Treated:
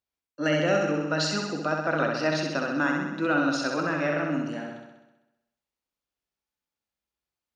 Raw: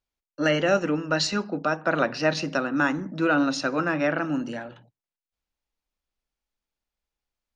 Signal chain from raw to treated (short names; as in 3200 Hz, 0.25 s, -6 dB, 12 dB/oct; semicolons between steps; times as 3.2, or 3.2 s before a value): HPF 81 Hz; flutter echo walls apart 11.1 m, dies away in 1 s; gain -4 dB